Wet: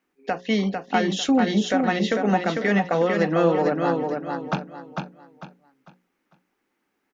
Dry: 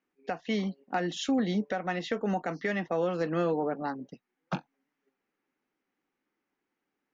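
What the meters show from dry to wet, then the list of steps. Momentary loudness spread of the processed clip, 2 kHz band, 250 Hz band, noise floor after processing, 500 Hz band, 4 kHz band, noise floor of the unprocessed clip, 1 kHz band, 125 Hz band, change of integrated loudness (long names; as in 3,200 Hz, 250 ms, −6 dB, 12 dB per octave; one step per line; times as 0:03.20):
11 LU, +9.5 dB, +9.0 dB, −75 dBFS, +9.0 dB, +9.5 dB, −85 dBFS, +9.5 dB, +8.5 dB, +9.0 dB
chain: mains-hum notches 60/120/180/240/300/360/420/480/540 Hz
on a send: repeating echo 449 ms, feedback 31%, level −4.5 dB
on the sum: level +8 dB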